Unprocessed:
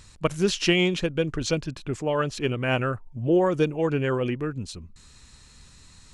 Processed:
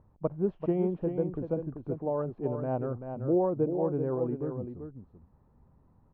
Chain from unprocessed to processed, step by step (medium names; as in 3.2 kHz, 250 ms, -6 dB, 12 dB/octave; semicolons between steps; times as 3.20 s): Chebyshev low-pass 840 Hz, order 3; bass shelf 74 Hz -11.5 dB; short-mantissa float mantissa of 8-bit; on a send: delay 387 ms -7.5 dB; on the sum: trim -4 dB